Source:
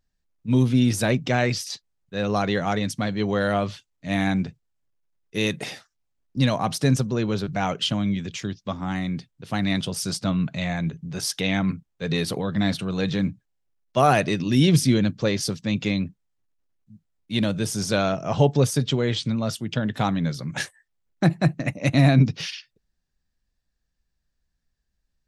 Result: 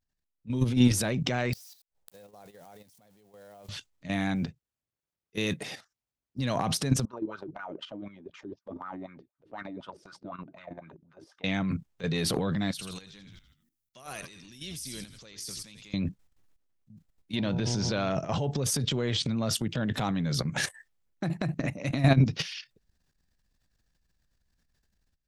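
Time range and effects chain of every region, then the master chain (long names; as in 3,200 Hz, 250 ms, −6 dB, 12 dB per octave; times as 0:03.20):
0:01.53–0:03.69: spike at every zero crossing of −18.5 dBFS + flat-topped bell 630 Hz +8.5 dB 1.3 octaves + gate with flip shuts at −22 dBFS, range −35 dB
0:04.35–0:06.41: high-pass filter 42 Hz + floating-point word with a short mantissa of 6 bits + expander for the loud parts, over −40 dBFS
0:07.05–0:11.44: low-shelf EQ 100 Hz +11 dB + comb filter 3.3 ms, depth 33% + LFO wah 4 Hz 310–1,400 Hz, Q 7.3
0:12.71–0:15.94: downward compressor 2 to 1, threshold −31 dBFS + first-order pre-emphasis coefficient 0.9 + echo with shifted repeats 83 ms, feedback 47%, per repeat −85 Hz, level −11.5 dB
0:17.35–0:18.09: low-pass filter 5,400 Hz 24 dB per octave + hum with harmonics 120 Hz, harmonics 8, −34 dBFS −7 dB per octave
whole clip: automatic gain control gain up to 10 dB; transient designer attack −4 dB, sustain +9 dB; output level in coarse steps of 11 dB; level −6.5 dB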